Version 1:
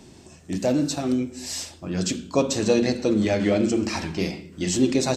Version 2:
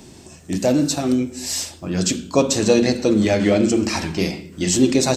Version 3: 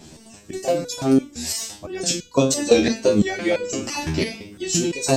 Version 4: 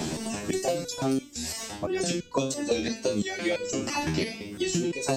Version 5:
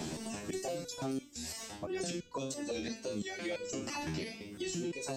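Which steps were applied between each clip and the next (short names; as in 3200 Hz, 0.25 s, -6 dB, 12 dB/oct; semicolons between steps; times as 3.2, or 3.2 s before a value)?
high shelf 9500 Hz +8.5 dB; gain +4.5 dB
wow and flutter 100 cents; harmonic-percussive split percussive +8 dB; stepped resonator 5.9 Hz 79–490 Hz; gain +4.5 dB
three-band squash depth 100%; gain -8 dB
limiter -19.5 dBFS, peak gain reduction 7 dB; gain -8.5 dB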